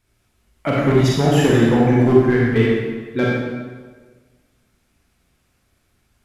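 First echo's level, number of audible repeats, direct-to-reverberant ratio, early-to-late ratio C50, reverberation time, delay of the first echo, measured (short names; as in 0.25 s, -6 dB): none, none, -5.0 dB, -2.5 dB, 1.5 s, none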